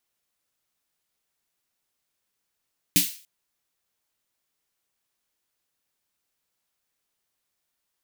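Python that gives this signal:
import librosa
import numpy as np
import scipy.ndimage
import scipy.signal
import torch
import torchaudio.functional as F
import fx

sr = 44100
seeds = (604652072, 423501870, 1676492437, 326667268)

y = fx.drum_snare(sr, seeds[0], length_s=0.29, hz=180.0, second_hz=290.0, noise_db=5, noise_from_hz=2300.0, decay_s=0.18, noise_decay_s=0.41)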